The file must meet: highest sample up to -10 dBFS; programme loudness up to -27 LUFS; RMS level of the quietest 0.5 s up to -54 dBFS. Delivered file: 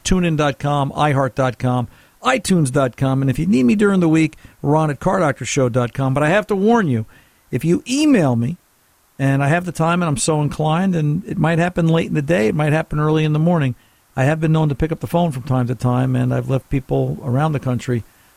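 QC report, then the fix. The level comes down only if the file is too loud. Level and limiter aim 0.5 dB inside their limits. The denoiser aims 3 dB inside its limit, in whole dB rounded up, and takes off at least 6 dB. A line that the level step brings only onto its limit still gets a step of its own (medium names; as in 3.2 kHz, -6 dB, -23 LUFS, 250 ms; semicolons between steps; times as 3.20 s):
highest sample -4.0 dBFS: fail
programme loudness -18.0 LUFS: fail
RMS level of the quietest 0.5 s -57 dBFS: pass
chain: trim -9.5 dB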